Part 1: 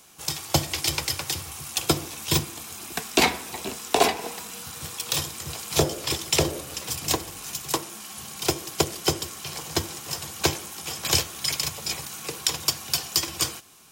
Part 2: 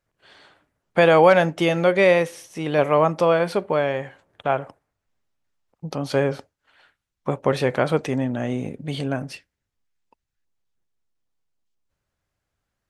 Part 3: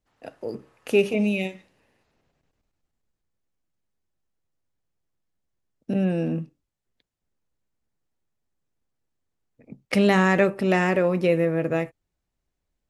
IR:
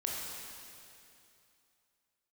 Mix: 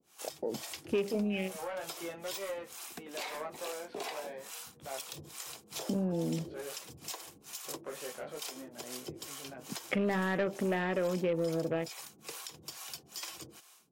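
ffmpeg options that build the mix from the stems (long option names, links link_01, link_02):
-filter_complex "[0:a]lowshelf=frequency=99:gain=-10.5,alimiter=limit=-12.5dB:level=0:latency=1:release=138,acrossover=split=460[link_01][link_02];[link_01]aeval=exprs='val(0)*(1-1/2+1/2*cos(2*PI*2.3*n/s))':channel_layout=same[link_03];[link_02]aeval=exprs='val(0)*(1-1/2-1/2*cos(2*PI*2.3*n/s))':channel_layout=same[link_04];[link_03][link_04]amix=inputs=2:normalize=0,volume=-5.5dB[link_05];[1:a]aeval=exprs='clip(val(0),-1,0.133)':channel_layout=same,flanger=delay=15:depth=5.6:speed=0.45,acrossover=split=270 4000:gain=0.178 1 0.251[link_06][link_07][link_08];[link_06][link_07][link_08]amix=inputs=3:normalize=0,adelay=400,volume=-15.5dB[link_09];[2:a]afwtdn=0.0282,volume=1dB,asplit=2[link_10][link_11];[link_11]apad=whole_len=586365[link_12];[link_09][link_12]sidechaincompress=threshold=-41dB:ratio=8:attack=16:release=168[link_13];[link_05][link_13]amix=inputs=2:normalize=0,alimiter=level_in=4dB:limit=-24dB:level=0:latency=1:release=118,volume=-4dB,volume=0dB[link_14];[link_10][link_14]amix=inputs=2:normalize=0,lowshelf=frequency=100:gain=-9,asoftclip=type=tanh:threshold=-11.5dB,acompressor=threshold=-33dB:ratio=2.5"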